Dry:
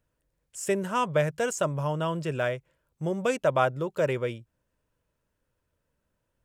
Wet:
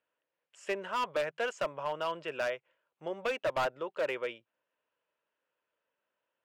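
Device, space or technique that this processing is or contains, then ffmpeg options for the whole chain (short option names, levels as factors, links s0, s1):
megaphone: -af "highpass=550,lowpass=2800,equalizer=f=2900:t=o:w=0.54:g=6,asoftclip=type=hard:threshold=0.0562,volume=0.841"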